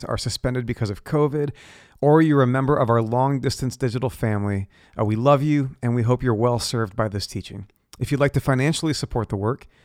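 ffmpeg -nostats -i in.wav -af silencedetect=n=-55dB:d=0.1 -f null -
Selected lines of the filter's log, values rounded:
silence_start: 7.76
silence_end: 7.93 | silence_duration: 0.17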